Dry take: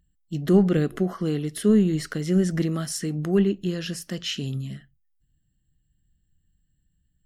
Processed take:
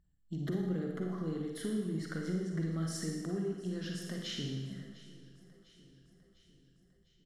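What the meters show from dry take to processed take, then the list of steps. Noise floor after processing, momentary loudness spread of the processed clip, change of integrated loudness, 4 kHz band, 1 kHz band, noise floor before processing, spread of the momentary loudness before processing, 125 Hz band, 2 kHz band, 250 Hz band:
-69 dBFS, 10 LU, -13.5 dB, -10.0 dB, -12.0 dB, -71 dBFS, 12 LU, -11.5 dB, -10.0 dB, -13.5 dB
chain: LPF 3700 Hz 6 dB/oct; bell 2600 Hz -12.5 dB 0.25 oct; compressor 6:1, threshold -31 dBFS, peak gain reduction 17.5 dB; on a send: feedback echo 0.702 s, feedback 57%, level -19 dB; on the sum: Schroeder reverb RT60 1.1 s, DRR 0.5 dB; gain -5.5 dB

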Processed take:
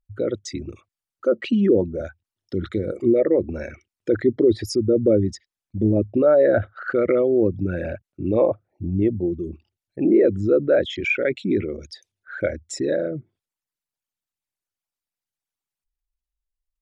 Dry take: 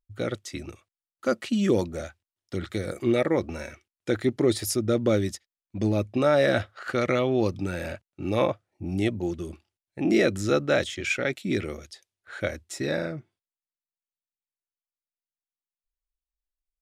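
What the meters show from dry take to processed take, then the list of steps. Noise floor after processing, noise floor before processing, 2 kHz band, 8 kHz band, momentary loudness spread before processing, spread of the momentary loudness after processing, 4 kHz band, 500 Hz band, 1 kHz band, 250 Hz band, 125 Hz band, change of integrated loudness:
under -85 dBFS, under -85 dBFS, +0.5 dB, n/a, 15 LU, 15 LU, -2.0 dB, +6.5 dB, -3.0 dB, +5.0 dB, +3.0 dB, +5.0 dB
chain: formant sharpening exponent 2; treble ducked by the level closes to 2100 Hz, closed at -19.5 dBFS; gain +5.5 dB

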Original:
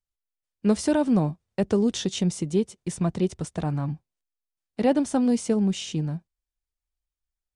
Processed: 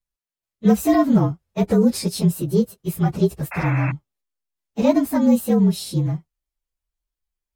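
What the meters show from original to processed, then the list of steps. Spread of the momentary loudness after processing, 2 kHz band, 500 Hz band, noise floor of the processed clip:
9 LU, +7.5 dB, +4.5 dB, under -85 dBFS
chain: inharmonic rescaling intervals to 113%; painted sound noise, 3.51–3.92, 540–2700 Hz -38 dBFS; gain +7.5 dB

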